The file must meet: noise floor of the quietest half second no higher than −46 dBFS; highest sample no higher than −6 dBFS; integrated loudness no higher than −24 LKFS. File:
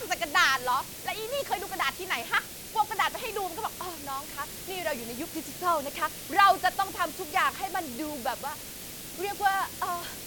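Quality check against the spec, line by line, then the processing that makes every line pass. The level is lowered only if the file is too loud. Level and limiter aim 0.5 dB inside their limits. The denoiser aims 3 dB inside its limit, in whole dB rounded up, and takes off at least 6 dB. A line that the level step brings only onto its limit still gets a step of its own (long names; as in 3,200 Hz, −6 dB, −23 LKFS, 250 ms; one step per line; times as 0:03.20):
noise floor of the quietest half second −41 dBFS: out of spec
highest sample −8.0 dBFS: in spec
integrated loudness −29.0 LKFS: in spec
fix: broadband denoise 8 dB, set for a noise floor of −41 dBFS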